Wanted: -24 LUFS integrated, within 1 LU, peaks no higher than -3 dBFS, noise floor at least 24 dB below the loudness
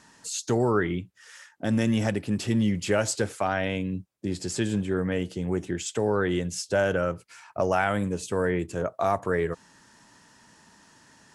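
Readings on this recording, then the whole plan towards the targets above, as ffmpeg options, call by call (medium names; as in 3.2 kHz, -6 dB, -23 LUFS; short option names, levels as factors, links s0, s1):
loudness -27.5 LUFS; peak level -10.5 dBFS; loudness target -24.0 LUFS
-> -af "volume=1.5"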